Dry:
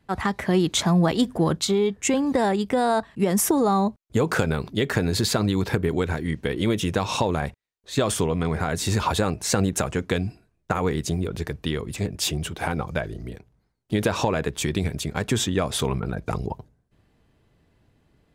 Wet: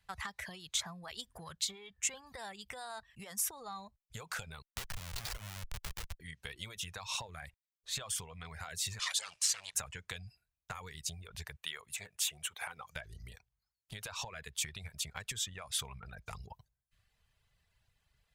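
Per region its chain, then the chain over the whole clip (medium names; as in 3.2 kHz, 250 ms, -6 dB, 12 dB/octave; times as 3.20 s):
4.62–6.20 s: Schmitt trigger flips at -20.5 dBFS + three bands compressed up and down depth 40%
8.99–9.75 s: comb filter that takes the minimum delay 1.7 ms + frequency weighting ITU-R 468
11.57–12.96 s: high-pass 630 Hz 6 dB/octave + peaking EQ 4.9 kHz -8.5 dB 0.44 oct
whole clip: compression 5:1, threshold -28 dBFS; amplifier tone stack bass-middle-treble 10-0-10; reverb removal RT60 0.7 s; trim -1 dB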